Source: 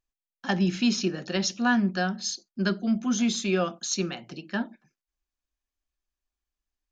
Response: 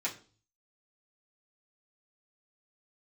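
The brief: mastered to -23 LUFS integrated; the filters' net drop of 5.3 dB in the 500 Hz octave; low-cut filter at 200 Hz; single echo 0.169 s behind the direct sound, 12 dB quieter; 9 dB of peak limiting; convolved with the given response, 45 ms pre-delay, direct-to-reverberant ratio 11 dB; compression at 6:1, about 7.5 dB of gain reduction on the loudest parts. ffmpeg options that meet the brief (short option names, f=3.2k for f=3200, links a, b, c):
-filter_complex "[0:a]highpass=200,equalizer=f=500:t=o:g=-7.5,acompressor=threshold=-29dB:ratio=6,alimiter=level_in=2dB:limit=-24dB:level=0:latency=1,volume=-2dB,aecho=1:1:169:0.251,asplit=2[a][b];[1:a]atrim=start_sample=2205,adelay=45[c];[b][c]afir=irnorm=-1:irlink=0,volume=-15dB[d];[a][d]amix=inputs=2:normalize=0,volume=12.5dB"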